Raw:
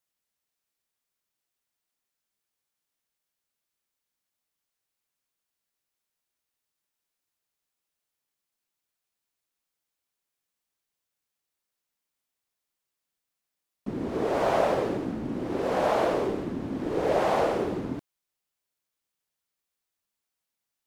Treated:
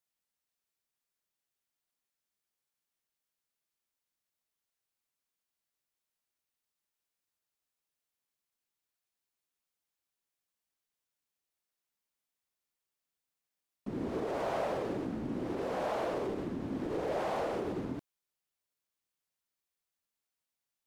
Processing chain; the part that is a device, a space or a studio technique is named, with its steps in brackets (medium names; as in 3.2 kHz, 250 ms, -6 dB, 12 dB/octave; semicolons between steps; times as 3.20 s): clipper into limiter (hard clipper -17.5 dBFS, distortion -22 dB; peak limiter -22.5 dBFS, peak gain reduction 5 dB); trim -4.5 dB